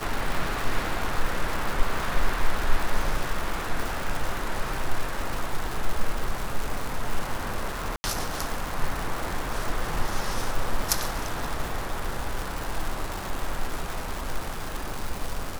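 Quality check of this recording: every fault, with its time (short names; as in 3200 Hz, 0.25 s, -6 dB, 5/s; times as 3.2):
crackle 360/s -27 dBFS
7.96–8.04 gap 80 ms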